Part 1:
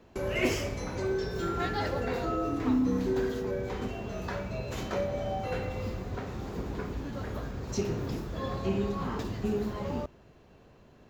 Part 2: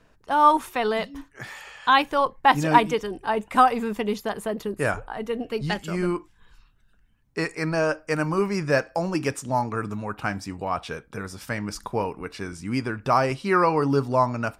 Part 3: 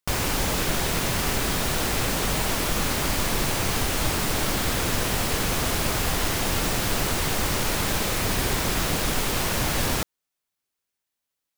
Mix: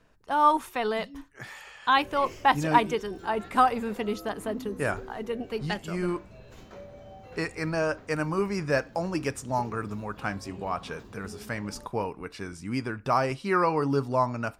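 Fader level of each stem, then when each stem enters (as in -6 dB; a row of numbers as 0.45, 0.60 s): -14.0 dB, -4.0 dB, off; 1.80 s, 0.00 s, off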